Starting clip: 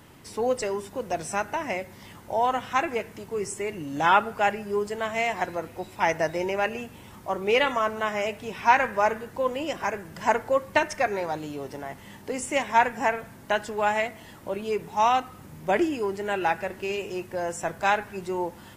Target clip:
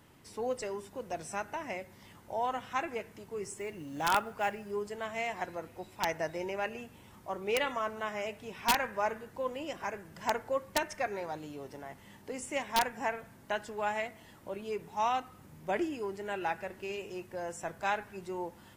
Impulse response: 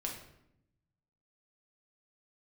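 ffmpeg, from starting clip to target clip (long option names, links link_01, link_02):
-filter_complex "[0:a]asettb=1/sr,asplit=3[link_01][link_02][link_03];[link_01]atrim=end=3.464[link_04];[link_02]atrim=start=3.46:end=4.71,asetpts=PTS-STARTPTS,afade=type=in:duration=0.004:curve=qsin,afade=type=out:start_time=1.246:duration=0.004:curve=qsin,acrusher=bits=7:mode=log:mix=0:aa=0.000001[link_05];[link_03]atrim=start=4.706[link_06];[link_04][link_05]acrossfade=duration=0.004:curve1=hsin:curve2=qsin[link_07];[link_07][link_06]acrossfade=duration=0.004:curve1=qsin:curve2=hsin,aeval=exprs='(mod(2.82*val(0)+1,2)-1)/2.82':channel_layout=same,volume=-9dB"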